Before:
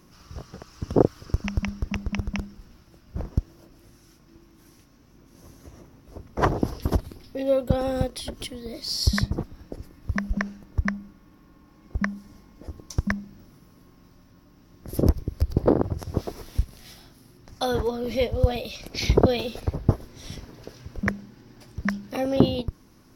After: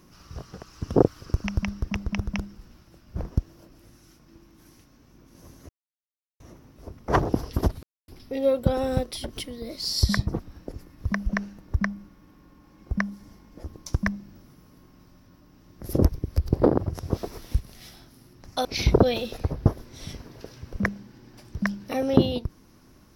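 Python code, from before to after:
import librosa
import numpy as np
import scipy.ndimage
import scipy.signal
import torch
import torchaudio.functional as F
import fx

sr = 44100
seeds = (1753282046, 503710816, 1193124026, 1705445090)

y = fx.edit(x, sr, fx.insert_silence(at_s=5.69, length_s=0.71),
    fx.insert_silence(at_s=7.12, length_s=0.25),
    fx.cut(start_s=17.69, length_s=1.19), tone=tone)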